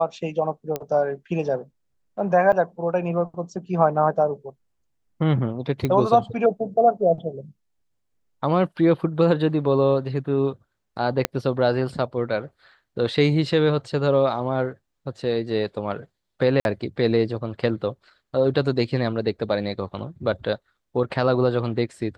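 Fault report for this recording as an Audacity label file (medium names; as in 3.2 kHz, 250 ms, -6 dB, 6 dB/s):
0.760000	0.760000	pop -12 dBFS
2.520000	2.530000	dropout 7.1 ms
5.850000	5.850000	pop -12 dBFS
11.250000	11.250000	pop -4 dBFS
16.600000	16.650000	dropout 51 ms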